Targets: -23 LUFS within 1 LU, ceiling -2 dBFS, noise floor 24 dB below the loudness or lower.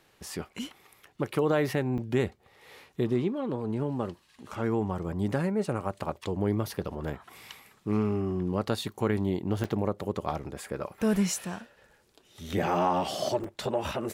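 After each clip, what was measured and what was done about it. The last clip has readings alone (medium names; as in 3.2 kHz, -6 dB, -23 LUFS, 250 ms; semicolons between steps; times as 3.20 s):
dropouts 3; longest dropout 3.9 ms; loudness -30.5 LUFS; peak level -12.5 dBFS; loudness target -23.0 LUFS
-> interpolate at 1.98/9.64/13.44 s, 3.9 ms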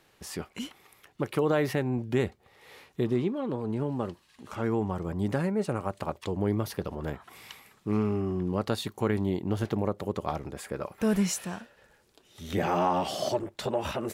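dropouts 0; loudness -30.5 LUFS; peak level -12.5 dBFS; loudness target -23.0 LUFS
-> trim +7.5 dB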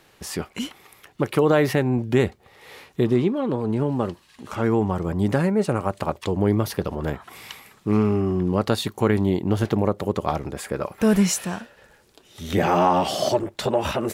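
loudness -23.0 LUFS; peak level -5.0 dBFS; noise floor -57 dBFS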